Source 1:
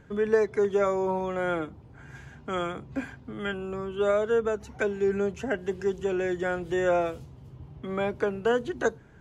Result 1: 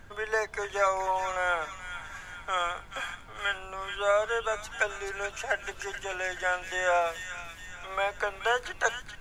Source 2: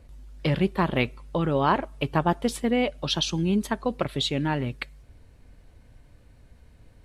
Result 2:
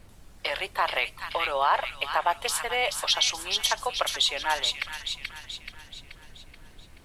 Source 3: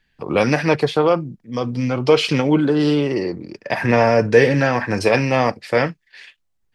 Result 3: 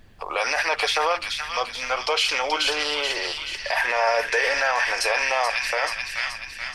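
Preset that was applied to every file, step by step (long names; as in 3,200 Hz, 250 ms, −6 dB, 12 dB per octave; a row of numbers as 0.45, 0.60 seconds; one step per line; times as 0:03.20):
high-pass filter 670 Hz 24 dB per octave
high-shelf EQ 6,300 Hz +5 dB
on a send: delay with a high-pass on its return 430 ms, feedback 51%, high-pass 2,000 Hz, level −4.5 dB
on the sum: background noise brown −53 dBFS
brickwall limiter −16.5 dBFS
normalise the peak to −12 dBFS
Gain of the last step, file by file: +4.5, +4.5, +4.5 decibels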